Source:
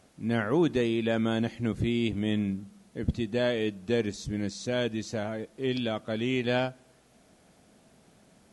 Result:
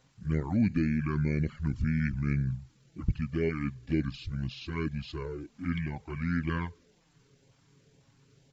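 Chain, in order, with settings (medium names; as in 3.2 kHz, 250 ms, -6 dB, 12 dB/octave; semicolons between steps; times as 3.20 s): LFO notch saw up 2 Hz 500–2100 Hz; touch-sensitive flanger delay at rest 5.2 ms, full sweep at -23 dBFS; pitch shift -7 st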